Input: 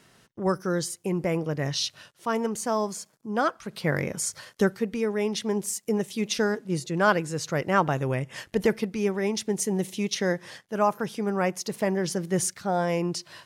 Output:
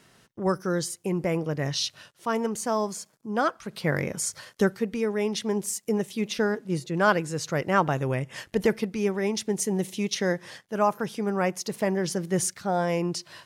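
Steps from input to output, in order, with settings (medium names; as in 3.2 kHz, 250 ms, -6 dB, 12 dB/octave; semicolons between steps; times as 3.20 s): 5.96–6.95 s: dynamic bell 7.1 kHz, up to -7 dB, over -45 dBFS, Q 0.71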